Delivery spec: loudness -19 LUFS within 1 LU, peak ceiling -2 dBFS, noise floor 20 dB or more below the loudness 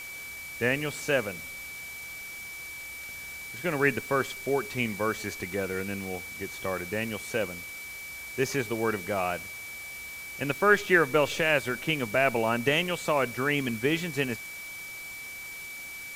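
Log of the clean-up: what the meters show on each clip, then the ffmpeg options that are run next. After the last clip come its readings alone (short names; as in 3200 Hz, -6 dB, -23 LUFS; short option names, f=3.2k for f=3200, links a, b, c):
steady tone 2300 Hz; tone level -39 dBFS; noise floor -41 dBFS; noise floor target -50 dBFS; loudness -29.5 LUFS; peak -7.0 dBFS; loudness target -19.0 LUFS
-> -af "bandreject=f=2.3k:w=30"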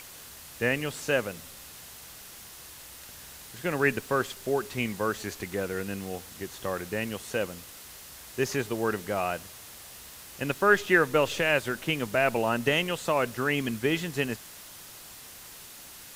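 steady tone none; noise floor -47 dBFS; noise floor target -49 dBFS
-> -af "afftdn=nr=6:nf=-47"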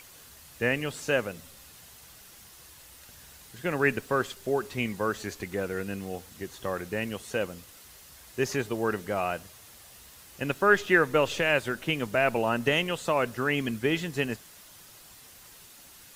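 noise floor -52 dBFS; loudness -28.5 LUFS; peak -7.5 dBFS; loudness target -19.0 LUFS
-> -af "volume=9.5dB,alimiter=limit=-2dB:level=0:latency=1"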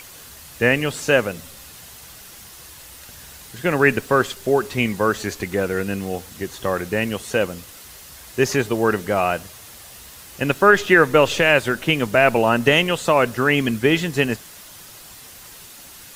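loudness -19.0 LUFS; peak -2.0 dBFS; noise floor -42 dBFS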